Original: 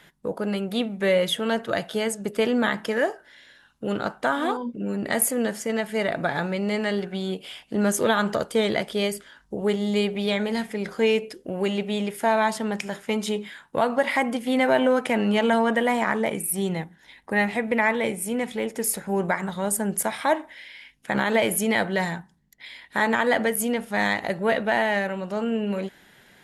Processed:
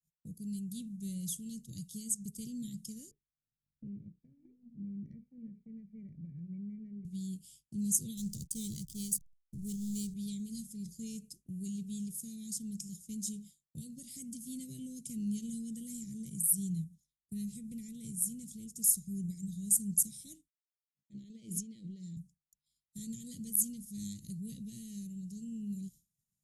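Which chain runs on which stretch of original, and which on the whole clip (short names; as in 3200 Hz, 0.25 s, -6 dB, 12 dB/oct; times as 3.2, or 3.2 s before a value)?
3.11–7.05 rippled Chebyshev low-pass 2400 Hz, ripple 6 dB + notches 60/120/180/240/300/360/420/480 Hz + three-band squash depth 70%
8.17–10.14 high shelf 3800 Hz +8 dB + de-hum 243.4 Hz, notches 38 + backlash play -29 dBFS
20.48–22.17 HPF 350 Hz + tape spacing loss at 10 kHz 29 dB + sustainer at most 27 dB/s
whole clip: elliptic band-stop 160–6500 Hz, stop band 70 dB; low shelf 340 Hz -3.5 dB; expander -50 dBFS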